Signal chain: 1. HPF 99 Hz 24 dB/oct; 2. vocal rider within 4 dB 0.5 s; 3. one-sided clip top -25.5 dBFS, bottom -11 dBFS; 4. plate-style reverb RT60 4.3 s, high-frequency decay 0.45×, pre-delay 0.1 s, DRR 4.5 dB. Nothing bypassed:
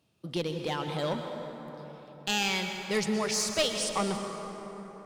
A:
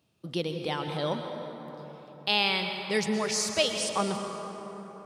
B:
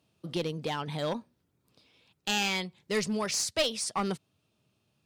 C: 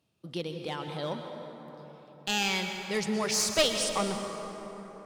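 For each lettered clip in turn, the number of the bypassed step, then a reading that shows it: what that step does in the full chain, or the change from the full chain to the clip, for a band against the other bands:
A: 3, distortion -10 dB; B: 4, momentary loudness spread change -7 LU; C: 2, 125 Hz band -2.5 dB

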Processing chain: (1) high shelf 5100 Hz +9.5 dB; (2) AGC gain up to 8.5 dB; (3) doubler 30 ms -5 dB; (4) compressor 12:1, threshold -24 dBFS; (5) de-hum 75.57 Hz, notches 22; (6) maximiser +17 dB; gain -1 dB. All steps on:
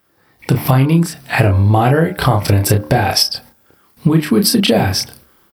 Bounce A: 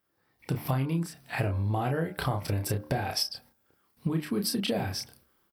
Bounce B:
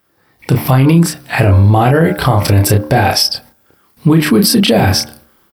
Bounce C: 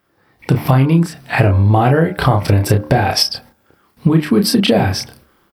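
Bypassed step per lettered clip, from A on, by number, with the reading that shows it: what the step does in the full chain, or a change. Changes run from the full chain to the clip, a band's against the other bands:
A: 6, crest factor change +6.5 dB; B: 4, mean gain reduction 8.0 dB; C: 1, 8 kHz band -5.0 dB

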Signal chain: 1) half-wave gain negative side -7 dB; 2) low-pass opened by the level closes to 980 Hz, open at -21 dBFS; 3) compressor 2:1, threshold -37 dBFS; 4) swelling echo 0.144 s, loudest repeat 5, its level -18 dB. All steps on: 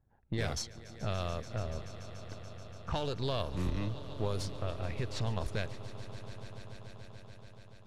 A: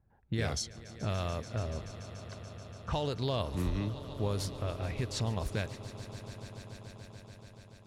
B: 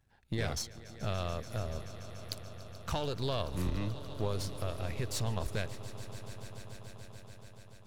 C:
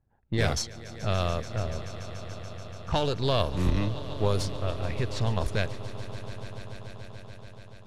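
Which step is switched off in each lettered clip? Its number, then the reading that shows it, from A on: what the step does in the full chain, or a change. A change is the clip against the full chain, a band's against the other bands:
1, distortion -8 dB; 2, 8 kHz band +3.5 dB; 3, mean gain reduction 6.5 dB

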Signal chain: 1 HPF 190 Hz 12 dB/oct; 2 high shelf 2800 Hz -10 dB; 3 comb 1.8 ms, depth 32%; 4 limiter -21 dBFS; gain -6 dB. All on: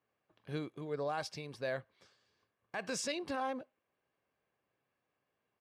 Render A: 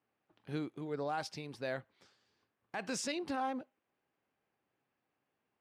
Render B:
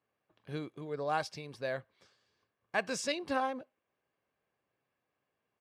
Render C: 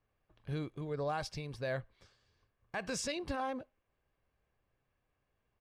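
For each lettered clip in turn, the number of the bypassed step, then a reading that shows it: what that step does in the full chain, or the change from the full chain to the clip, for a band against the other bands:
3, 250 Hz band +3.5 dB; 4, crest factor change +7.5 dB; 1, 125 Hz band +5.5 dB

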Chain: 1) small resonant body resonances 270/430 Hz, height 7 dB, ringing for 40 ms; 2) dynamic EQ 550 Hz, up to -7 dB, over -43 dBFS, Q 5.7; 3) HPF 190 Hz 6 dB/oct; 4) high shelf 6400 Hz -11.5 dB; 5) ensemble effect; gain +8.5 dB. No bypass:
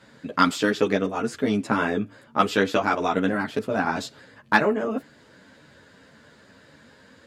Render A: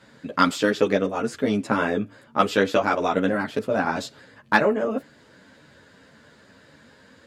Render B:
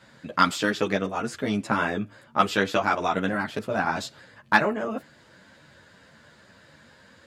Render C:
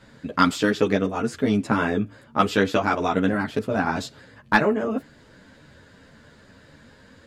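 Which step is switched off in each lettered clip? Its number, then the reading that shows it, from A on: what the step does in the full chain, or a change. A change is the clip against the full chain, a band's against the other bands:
2, 500 Hz band +2.0 dB; 1, 250 Hz band -3.5 dB; 3, 125 Hz band +4.0 dB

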